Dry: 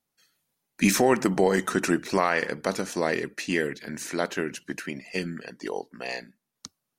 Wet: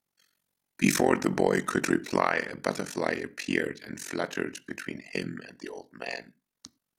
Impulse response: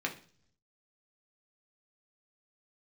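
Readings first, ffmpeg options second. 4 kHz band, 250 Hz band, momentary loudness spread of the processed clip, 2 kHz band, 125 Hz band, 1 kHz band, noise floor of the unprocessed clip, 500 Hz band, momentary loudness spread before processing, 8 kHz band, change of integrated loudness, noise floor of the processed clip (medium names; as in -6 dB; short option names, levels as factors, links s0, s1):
-3.5 dB, -2.5 dB, 14 LU, -2.0 dB, -2.5 dB, -2.5 dB, -83 dBFS, -3.0 dB, 14 LU, -3.5 dB, -2.5 dB, under -85 dBFS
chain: -filter_complex "[0:a]tremolo=f=45:d=0.974,asplit=2[s0][s1];[1:a]atrim=start_sample=2205,atrim=end_sample=4410,asetrate=37044,aresample=44100[s2];[s1][s2]afir=irnorm=-1:irlink=0,volume=0.141[s3];[s0][s3]amix=inputs=2:normalize=0"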